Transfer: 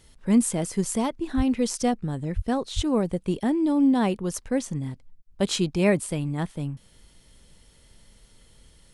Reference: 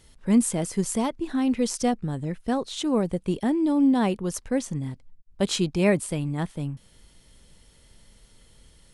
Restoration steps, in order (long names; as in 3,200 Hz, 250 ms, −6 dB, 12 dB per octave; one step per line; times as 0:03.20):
0:01.36–0:01.48: high-pass filter 140 Hz 24 dB per octave
0:02.35–0:02.47: high-pass filter 140 Hz 24 dB per octave
0:02.75–0:02.87: high-pass filter 140 Hz 24 dB per octave